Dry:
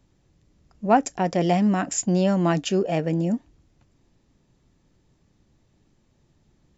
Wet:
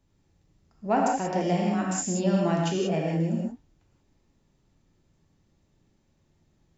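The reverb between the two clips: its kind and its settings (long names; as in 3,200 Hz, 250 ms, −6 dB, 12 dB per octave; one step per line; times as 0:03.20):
reverb whose tail is shaped and stops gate 210 ms flat, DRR −2.5 dB
level −8 dB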